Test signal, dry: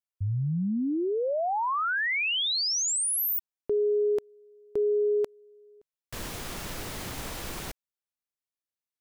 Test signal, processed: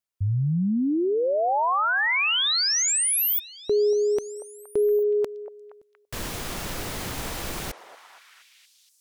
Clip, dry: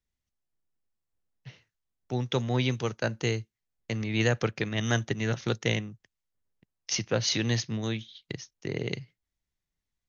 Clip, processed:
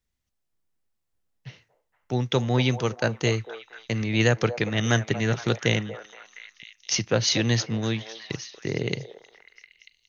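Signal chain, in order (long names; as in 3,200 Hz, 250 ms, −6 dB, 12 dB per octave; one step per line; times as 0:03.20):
echo through a band-pass that steps 235 ms, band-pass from 650 Hz, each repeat 0.7 octaves, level −8 dB
level +4.5 dB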